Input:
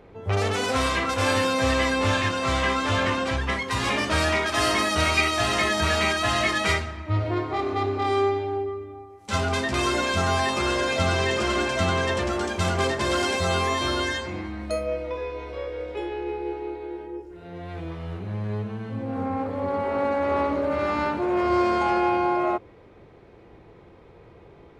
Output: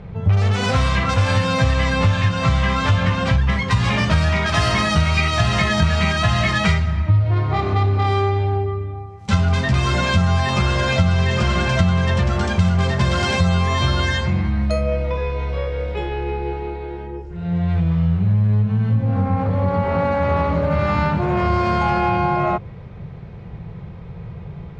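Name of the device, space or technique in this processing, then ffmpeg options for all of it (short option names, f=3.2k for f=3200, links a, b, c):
jukebox: -af "lowpass=6.2k,lowshelf=f=220:t=q:w=3:g=10,acompressor=threshold=-22dB:ratio=4,volume=7.5dB"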